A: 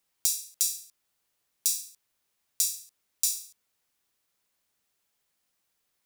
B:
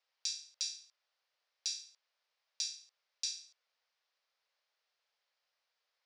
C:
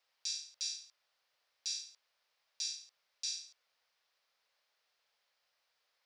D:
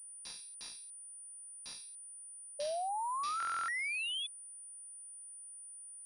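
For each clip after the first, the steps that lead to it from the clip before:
elliptic band-pass 520–5100 Hz, stop band 50 dB; gain -1.5 dB
limiter -30.5 dBFS, peak gain reduction 10 dB; gain +4.5 dB
painted sound rise, 2.59–4.27, 570–3500 Hz -32 dBFS; stuck buffer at 2.28/3.38, samples 1024, times 12; pulse-width modulation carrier 9400 Hz; gain -4.5 dB

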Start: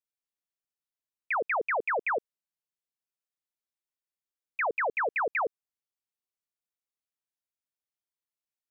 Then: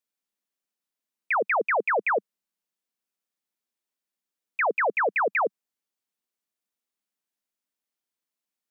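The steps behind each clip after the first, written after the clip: resonant low shelf 160 Hz -7.5 dB, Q 3; gain +4.5 dB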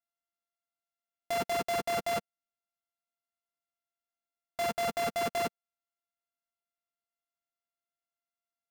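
sample sorter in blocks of 64 samples; limiter -29 dBFS, peak gain reduction 10.5 dB; sample leveller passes 5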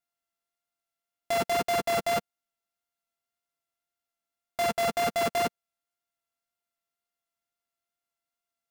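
wow and flutter 15 cents; gain +4.5 dB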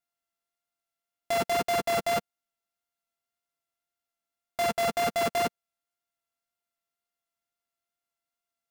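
nothing audible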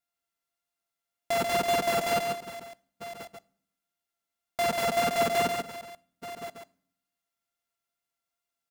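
reverse delay 0.65 s, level -13.5 dB; echo 0.138 s -5 dB; on a send at -17.5 dB: reverb RT60 0.60 s, pre-delay 3 ms

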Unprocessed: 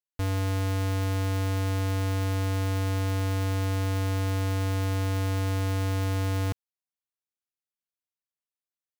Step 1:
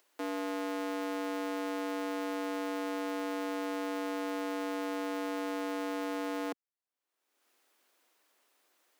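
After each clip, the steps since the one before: steep high-pass 270 Hz 36 dB/oct; high shelf 2700 Hz -10 dB; upward compressor, threshold -48 dBFS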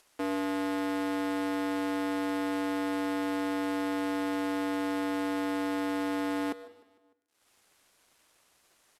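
CVSD 64 kbps; feedback echo 0.151 s, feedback 54%, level -21.5 dB; on a send at -15.5 dB: reverb RT60 1.0 s, pre-delay 75 ms; on the sum: gain +5 dB

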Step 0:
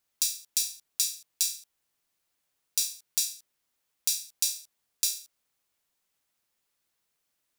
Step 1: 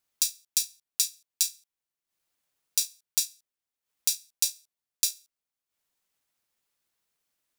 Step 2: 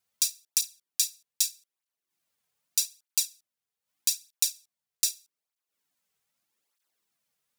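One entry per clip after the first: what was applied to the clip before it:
transient shaper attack +4 dB, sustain -11 dB; gain -1.5 dB
tape flanging out of phase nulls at 0.81 Hz, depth 3.6 ms; gain +3 dB

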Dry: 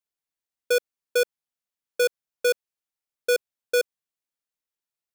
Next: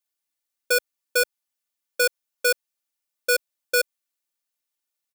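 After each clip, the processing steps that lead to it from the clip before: tilt +1.5 dB/oct; comb 3.4 ms, depth 86%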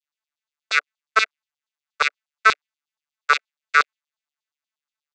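arpeggiated vocoder bare fifth, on D3, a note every 0.125 s; dynamic EQ 2000 Hz, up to +8 dB, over -40 dBFS, Q 0.84; LFO high-pass saw down 8.4 Hz 870–4100 Hz; gain +3.5 dB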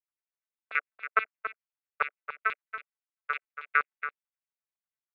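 steep low-pass 2600 Hz 36 dB/oct; tremolo saw down 12 Hz, depth 85%; on a send: echo 0.28 s -10 dB; on the sum: gain -6 dB

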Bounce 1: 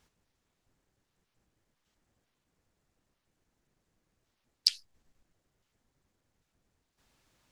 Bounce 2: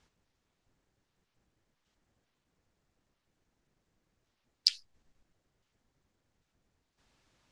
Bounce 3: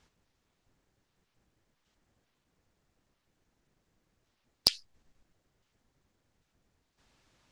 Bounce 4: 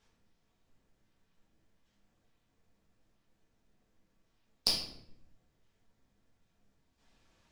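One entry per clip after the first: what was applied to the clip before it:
LPF 7400 Hz 12 dB/oct
one-sided fold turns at -9 dBFS; gain +2.5 dB
shoebox room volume 170 m³, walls mixed, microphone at 1.6 m; gain -7 dB

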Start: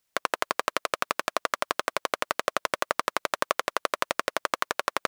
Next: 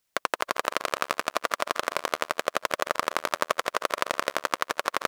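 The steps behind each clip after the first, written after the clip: regenerating reverse delay 0.165 s, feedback 51%, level -10.5 dB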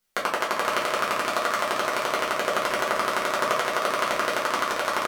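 echo 0.483 s -7 dB; shoebox room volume 32 m³, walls mixed, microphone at 0.92 m; gain -3 dB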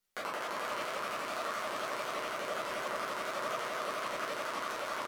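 limiter -15.5 dBFS, peak gain reduction 10 dB; shaped vibrato saw up 4.2 Hz, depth 100 cents; gain -7.5 dB

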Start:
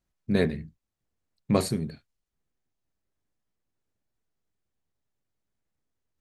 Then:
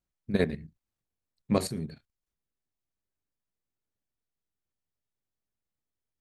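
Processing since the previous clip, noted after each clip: level quantiser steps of 11 dB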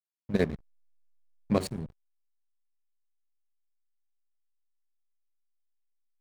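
backlash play -31.5 dBFS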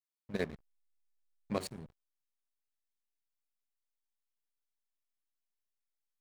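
low shelf 450 Hz -8 dB; gain -4.5 dB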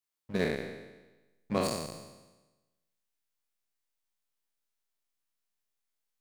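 spectral trails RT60 1.13 s; gain +2.5 dB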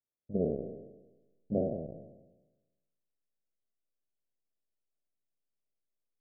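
steep low-pass 690 Hz 72 dB/oct

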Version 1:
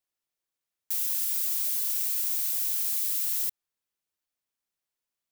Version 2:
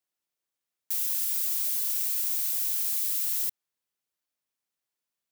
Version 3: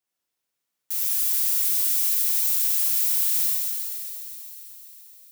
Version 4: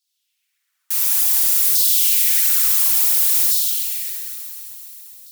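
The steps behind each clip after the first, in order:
HPF 88 Hz
thin delay 0.131 s, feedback 83%, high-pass 1700 Hz, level -14 dB; plate-style reverb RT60 2.4 s, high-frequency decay 1×, DRR -4.5 dB
added harmonics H 5 -20 dB, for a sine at -9.5 dBFS; phaser 1.6 Hz, delay 3 ms, feedback 34%; LFO high-pass saw down 0.57 Hz 360–4400 Hz; gain +4.5 dB

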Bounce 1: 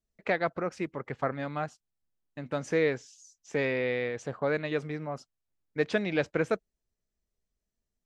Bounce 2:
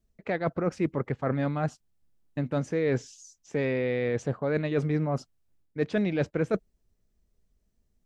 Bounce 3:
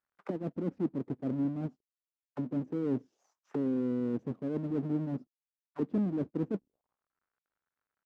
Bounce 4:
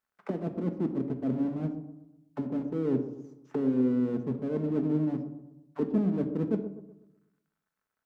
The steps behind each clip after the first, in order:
reverse; compressor, threshold -34 dBFS, peak gain reduction 12 dB; reverse; low shelf 460 Hz +10.5 dB; gain +4.5 dB
half-waves squared off; auto-wah 260–1500 Hz, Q 3, down, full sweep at -24 dBFS; gain -1.5 dB
dark delay 0.124 s, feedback 41%, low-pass 910 Hz, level -10.5 dB; on a send at -6.5 dB: reverb RT60 0.65 s, pre-delay 5 ms; on the sum: gain +2.5 dB

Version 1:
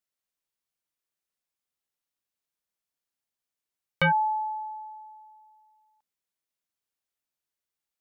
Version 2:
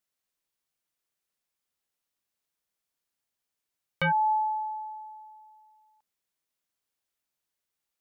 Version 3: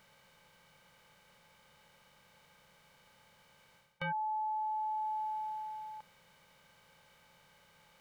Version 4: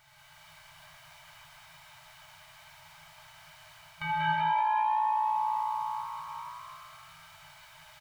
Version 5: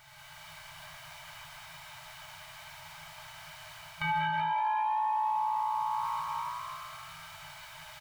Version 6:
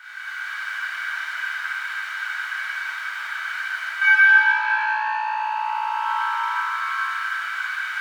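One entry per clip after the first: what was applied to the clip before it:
limiter -24 dBFS, peak gain reduction 7.5 dB; gain +3 dB
per-bin compression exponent 0.6; reverse; compressor 16:1, threshold -37 dBFS, peak gain reduction 15.5 dB; reverse; gain +3 dB
frequency-shifting echo 0.19 s, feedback 59%, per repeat +58 Hz, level -4.5 dB; non-linear reverb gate 0.41 s flat, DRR -7 dB; FFT band-reject 170–600 Hz; gain +2 dB
limiter -29 dBFS, peak gain reduction 11.5 dB; gain +5.5 dB
overdrive pedal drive 12 dB, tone 3100 Hz, clips at -23 dBFS; resonant high-pass 1500 Hz, resonance Q 7.4; plate-style reverb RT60 2.4 s, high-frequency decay 0.75×, DRR -8.5 dB; gain -3 dB

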